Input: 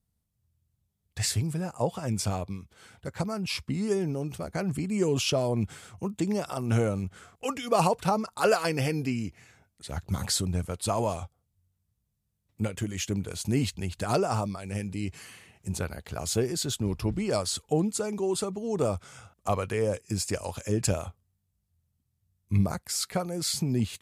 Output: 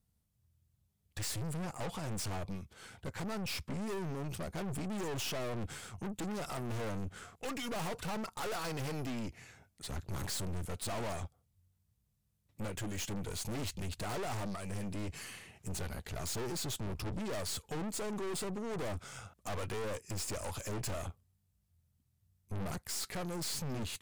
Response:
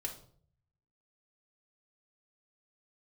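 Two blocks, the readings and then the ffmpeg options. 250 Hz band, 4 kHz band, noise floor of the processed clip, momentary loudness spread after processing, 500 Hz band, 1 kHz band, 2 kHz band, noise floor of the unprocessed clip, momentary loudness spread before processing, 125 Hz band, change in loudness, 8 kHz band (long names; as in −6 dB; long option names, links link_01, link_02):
−10.5 dB, −8.0 dB, −77 dBFS, 7 LU, −12.0 dB, −10.5 dB, −6.5 dB, −78 dBFS, 11 LU, −10.5 dB, −10.0 dB, −8.0 dB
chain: -af "aeval=exprs='(tanh(100*val(0)+0.55)-tanh(0.55))/100':channel_layout=same,volume=3dB"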